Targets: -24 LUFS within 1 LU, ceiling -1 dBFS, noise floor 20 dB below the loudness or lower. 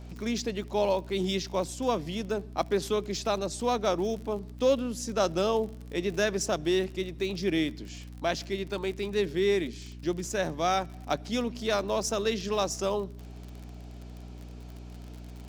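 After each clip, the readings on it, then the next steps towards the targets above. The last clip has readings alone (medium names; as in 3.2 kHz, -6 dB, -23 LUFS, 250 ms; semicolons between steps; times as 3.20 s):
tick rate 45 per s; hum 60 Hz; highest harmonic 300 Hz; hum level -41 dBFS; loudness -30.0 LUFS; peak level -12.5 dBFS; loudness target -24.0 LUFS
-> de-click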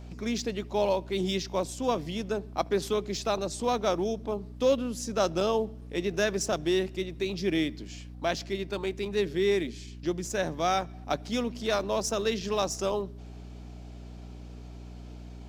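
tick rate 0.32 per s; hum 60 Hz; highest harmonic 300 Hz; hum level -41 dBFS
-> hum notches 60/120/180/240/300 Hz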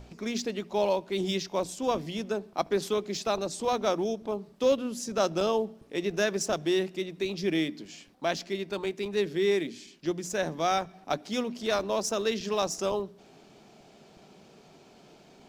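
hum not found; loudness -30.0 LUFS; peak level -13.0 dBFS; loudness target -24.0 LUFS
-> trim +6 dB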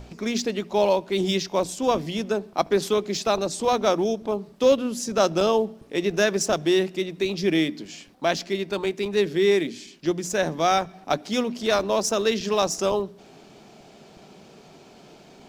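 loudness -24.0 LUFS; peak level -7.0 dBFS; noise floor -50 dBFS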